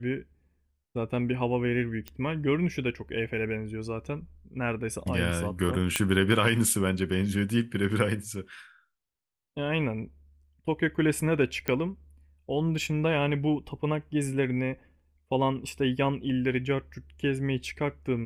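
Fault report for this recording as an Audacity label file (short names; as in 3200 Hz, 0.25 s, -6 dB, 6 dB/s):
2.080000	2.080000	pop -20 dBFS
5.960000	5.960000	pop -8 dBFS
11.680000	11.680000	pop -15 dBFS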